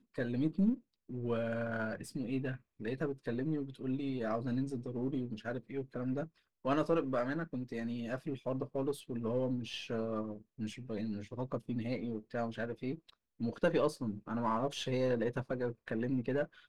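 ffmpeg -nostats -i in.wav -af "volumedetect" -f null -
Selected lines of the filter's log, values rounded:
mean_volume: -36.4 dB
max_volume: -18.9 dB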